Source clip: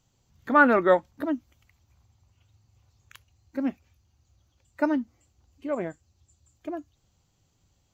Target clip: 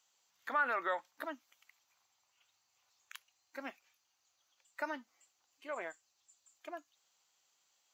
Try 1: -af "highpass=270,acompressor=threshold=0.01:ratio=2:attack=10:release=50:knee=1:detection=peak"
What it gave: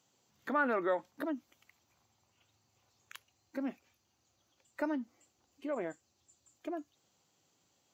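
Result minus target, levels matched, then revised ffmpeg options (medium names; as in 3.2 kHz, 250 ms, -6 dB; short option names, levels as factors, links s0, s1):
250 Hz band +11.0 dB
-af "highpass=1000,acompressor=threshold=0.01:ratio=2:attack=10:release=50:knee=1:detection=peak"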